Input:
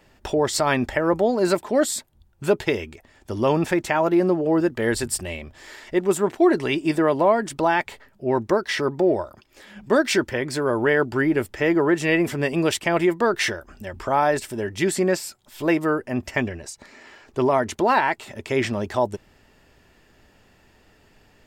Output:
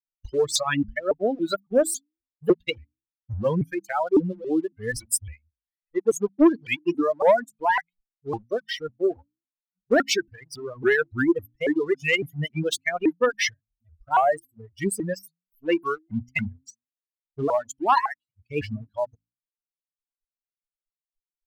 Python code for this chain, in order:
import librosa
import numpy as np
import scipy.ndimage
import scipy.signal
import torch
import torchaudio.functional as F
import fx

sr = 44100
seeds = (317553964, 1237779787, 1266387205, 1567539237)

y = fx.bin_expand(x, sr, power=3.0)
y = fx.leveller(y, sr, passes=1)
y = fx.hum_notches(y, sr, base_hz=60, count=5)
y = fx.dereverb_blind(y, sr, rt60_s=1.7)
y = fx.vibrato_shape(y, sr, shape='saw_up', rate_hz=3.6, depth_cents=250.0)
y = F.gain(torch.from_numpy(y), 2.5).numpy()